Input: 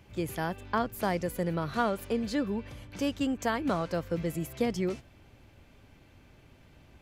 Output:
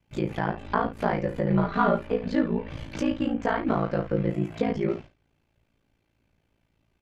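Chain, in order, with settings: in parallel at 0 dB: compression, threshold -41 dBFS, peak gain reduction 17.5 dB; on the sum: gate -43 dBFS, range -23 dB; on a send: early reflections 24 ms -4 dB, 66 ms -10.5 dB; on the sum: ring modulator 28 Hz; 1.50–1.99 s: comb 5 ms, depth 81%; low-pass that closes with the level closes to 2.3 kHz, closed at -28.5 dBFS; trim +4 dB

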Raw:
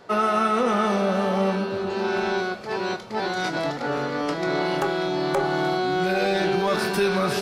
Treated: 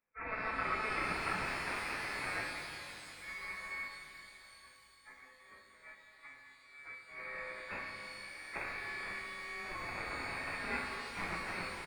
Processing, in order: gate -21 dBFS, range -49 dB; tilt EQ +2.5 dB/octave; in parallel at +3 dB: peak limiter -21.5 dBFS, peak gain reduction 11.5 dB; on the sum: plain phase-vocoder stretch 1.6×; word length cut 12-bit, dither triangular; feedback comb 300 Hz, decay 0.37 s, harmonics odd, mix 80%; Chebyshev shaper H 7 -8 dB, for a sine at -23 dBFS; doubling 33 ms -12 dB; frequency inversion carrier 2.6 kHz; pitch-shifted reverb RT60 3.4 s, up +12 st, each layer -8 dB, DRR 2 dB; trim -3 dB

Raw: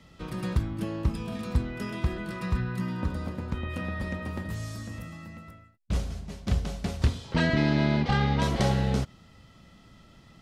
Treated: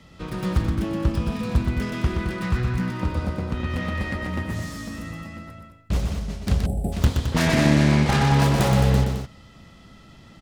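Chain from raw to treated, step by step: self-modulated delay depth 0.34 ms; loudspeakers at several distances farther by 42 m -5 dB, 74 m -8 dB; time-frequency box 6.66–6.93 s, 860–7500 Hz -25 dB; trim +4.5 dB

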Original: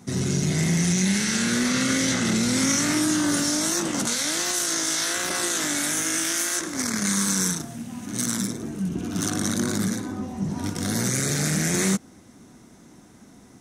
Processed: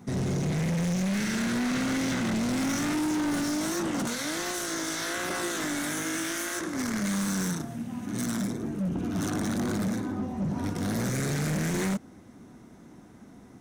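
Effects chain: peaking EQ 7.5 kHz -10 dB 2.4 oct; overload inside the chain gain 25.5 dB

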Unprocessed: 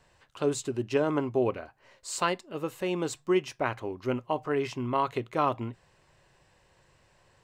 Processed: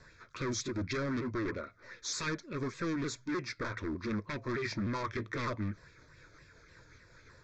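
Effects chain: sawtooth pitch modulation -4 st, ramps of 304 ms; in parallel at +2 dB: compression, threshold -37 dBFS, peak gain reduction 15.5 dB; on the sum: overload inside the chain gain 30.5 dB; steep low-pass 7.7 kHz 48 dB/octave; static phaser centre 2.9 kHz, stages 6; sweeping bell 3.8 Hz 640–3000 Hz +9 dB

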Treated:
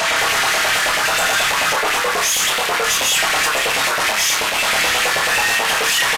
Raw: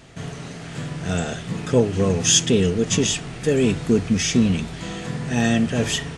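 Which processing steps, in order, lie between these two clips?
comb 6.4 ms, depth 62%; overdrive pedal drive 42 dB, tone 6.2 kHz, clips at -7.5 dBFS; wavefolder -14.5 dBFS; LFO high-pass saw up 9.3 Hz 570–2400 Hz; hard clipper -18 dBFS, distortion -8 dB; on a send: flutter echo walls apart 4.9 m, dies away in 0.29 s; on the sum: resampled via 32 kHz; trim +2 dB

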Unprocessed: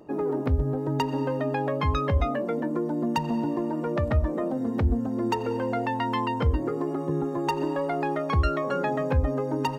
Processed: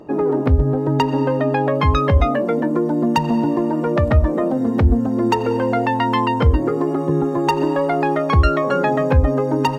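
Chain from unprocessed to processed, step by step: treble shelf 6.9 kHz -8.5 dB, from 1.75 s -2.5 dB; trim +9 dB

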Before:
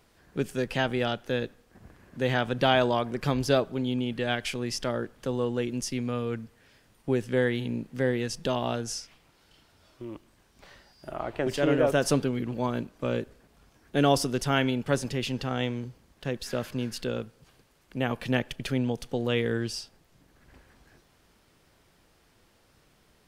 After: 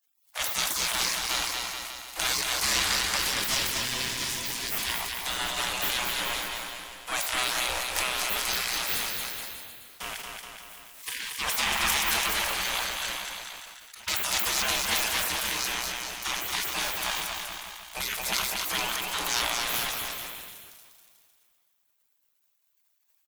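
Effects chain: 3.21–4.83 s: ring modulator 1 kHz; peaking EQ 12 kHz +12 dB 2.4 oct; in parallel at +3 dB: compression 5:1, threshold -37 dBFS, peak gain reduction 19 dB; on the sum: waveshaping leveller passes 3; 13.06–14.08 s: inverted gate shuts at -15 dBFS, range -27 dB; spectral gate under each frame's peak -25 dB weak; bouncing-ball echo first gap 230 ms, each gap 0.85×, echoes 5; reverberation RT60 2.6 s, pre-delay 4 ms, DRR 16 dB; decay stretcher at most 27 dB/s; trim +1 dB

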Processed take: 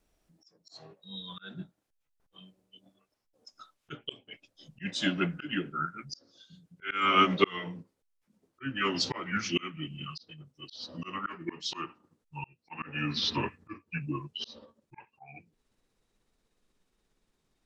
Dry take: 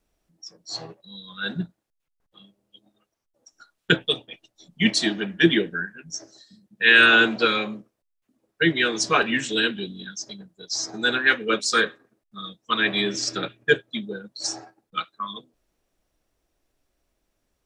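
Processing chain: pitch bend over the whole clip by -7.5 st starting unshifted; slow attack 483 ms

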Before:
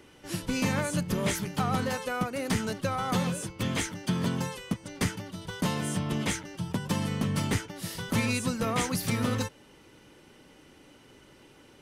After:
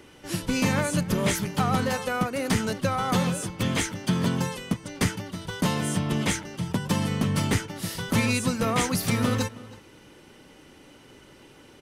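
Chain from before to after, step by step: echo from a far wall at 55 m, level -19 dB; trim +4 dB

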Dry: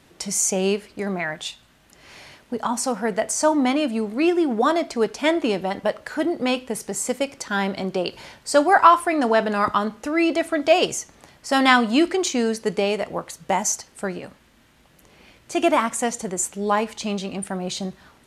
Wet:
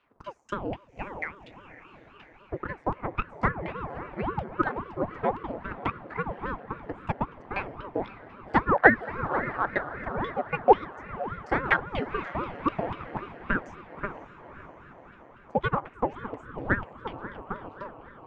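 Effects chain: LFO low-pass saw down 4.1 Hz 560–2300 Hz; transient shaper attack +11 dB, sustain -5 dB; steep high-pass 160 Hz 48 dB/octave; on a send: echo that smears into a reverb 539 ms, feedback 62%, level -13.5 dB; on the sum: ring modulator with a swept carrier 440 Hz, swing 85%, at 3.7 Hz; trim -14 dB

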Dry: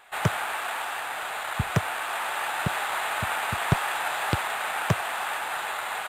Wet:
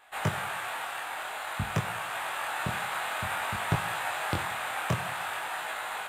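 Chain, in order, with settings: two-slope reverb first 0.83 s, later 2.6 s, from -20 dB, DRR 9.5 dB; chorus 0.52 Hz, delay 18.5 ms, depth 5.8 ms; trim -1.5 dB

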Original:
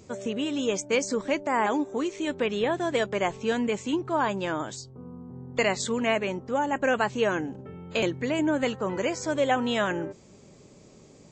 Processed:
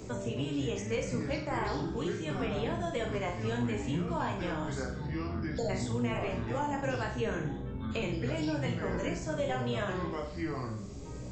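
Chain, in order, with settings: octave divider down 1 oct, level +2 dB; spectral selection erased 4.89–5.69 s, 940–3200 Hz; ever faster or slower copies 224 ms, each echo -6 st, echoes 2, each echo -6 dB; chorus voices 2, 0.39 Hz, delay 16 ms, depth 1.4 ms; flutter echo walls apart 7.8 m, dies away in 0.45 s; three bands compressed up and down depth 70%; trim -7.5 dB

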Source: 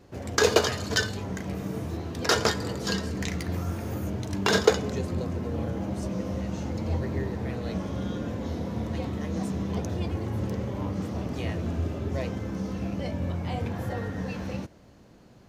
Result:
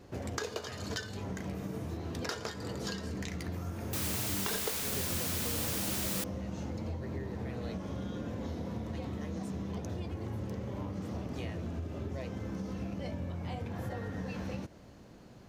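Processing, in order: compression 16:1, threshold -34 dBFS, peak gain reduction 22.5 dB; 3.93–6.24 s: word length cut 6-bit, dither triangular

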